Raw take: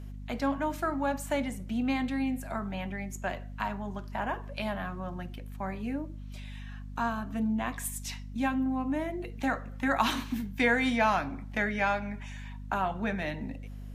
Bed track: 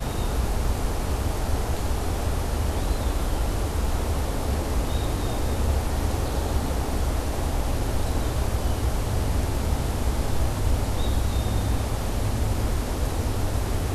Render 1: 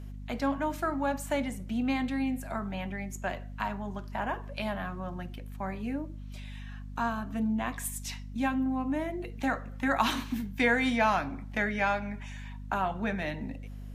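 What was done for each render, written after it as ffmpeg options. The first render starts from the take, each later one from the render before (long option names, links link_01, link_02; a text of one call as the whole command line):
ffmpeg -i in.wav -af anull out.wav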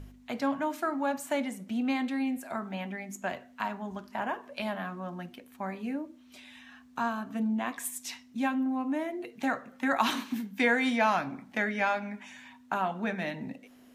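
ffmpeg -i in.wav -af "bandreject=frequency=50:width_type=h:width=4,bandreject=frequency=100:width_type=h:width=4,bandreject=frequency=150:width_type=h:width=4,bandreject=frequency=200:width_type=h:width=4" out.wav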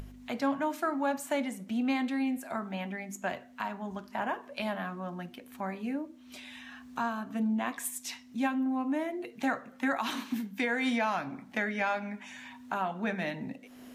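ffmpeg -i in.wav -af "acompressor=mode=upward:threshold=-40dB:ratio=2.5,alimiter=limit=-19.5dB:level=0:latency=1:release=266" out.wav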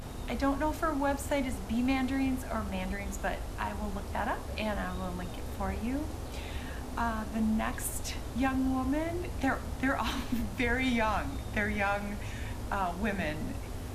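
ffmpeg -i in.wav -i bed.wav -filter_complex "[1:a]volume=-14dB[link_01];[0:a][link_01]amix=inputs=2:normalize=0" out.wav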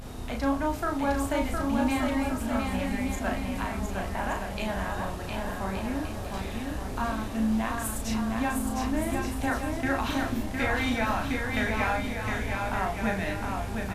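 ffmpeg -i in.wav -filter_complex "[0:a]asplit=2[link_01][link_02];[link_02]adelay=36,volume=-4.5dB[link_03];[link_01][link_03]amix=inputs=2:normalize=0,asplit=2[link_04][link_05];[link_05]aecho=0:1:710|1172|1471|1666|1793:0.631|0.398|0.251|0.158|0.1[link_06];[link_04][link_06]amix=inputs=2:normalize=0" out.wav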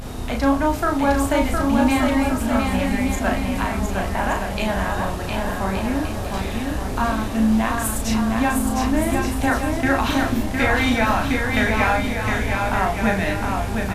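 ffmpeg -i in.wav -af "volume=8.5dB" out.wav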